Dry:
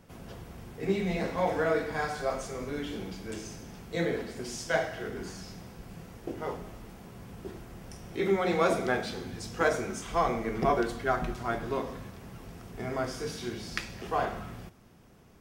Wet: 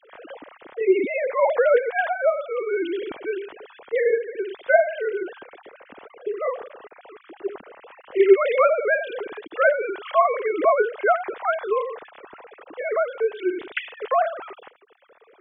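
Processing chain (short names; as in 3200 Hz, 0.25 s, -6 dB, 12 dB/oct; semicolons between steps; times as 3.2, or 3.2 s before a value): sine-wave speech; in parallel at +2 dB: compressor, threshold -38 dBFS, peak gain reduction 20.5 dB; on the sum: gain +6.5 dB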